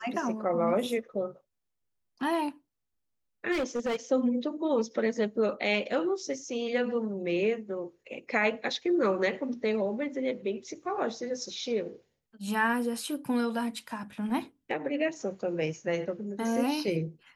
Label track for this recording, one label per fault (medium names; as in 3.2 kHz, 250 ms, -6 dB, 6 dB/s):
3.510000	3.960000	clipped -26 dBFS